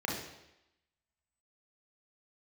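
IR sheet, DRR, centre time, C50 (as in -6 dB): -3.0 dB, 49 ms, 3.0 dB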